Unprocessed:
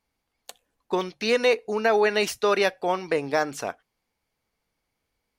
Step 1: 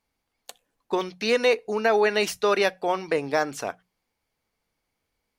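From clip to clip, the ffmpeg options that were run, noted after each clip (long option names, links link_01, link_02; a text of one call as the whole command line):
ffmpeg -i in.wav -af "bandreject=frequency=60:width_type=h:width=6,bandreject=frequency=120:width_type=h:width=6,bandreject=frequency=180:width_type=h:width=6" out.wav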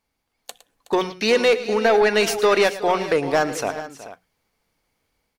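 ffmpeg -i in.wav -filter_complex "[0:a]dynaudnorm=framelen=290:gausssize=3:maxgain=4.5dB,asoftclip=type=tanh:threshold=-11.5dB,asplit=2[link_01][link_02];[link_02]aecho=0:1:111|370|435:0.168|0.158|0.178[link_03];[link_01][link_03]amix=inputs=2:normalize=0,volume=2dB" out.wav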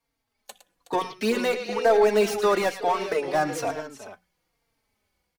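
ffmpeg -i in.wav -filter_complex "[0:a]acrossover=split=140|1100[link_01][link_02][link_03];[link_03]asoftclip=type=hard:threshold=-28.5dB[link_04];[link_01][link_02][link_04]amix=inputs=3:normalize=0,asplit=2[link_05][link_06];[link_06]adelay=3.8,afreqshift=-1.1[link_07];[link_05][link_07]amix=inputs=2:normalize=1" out.wav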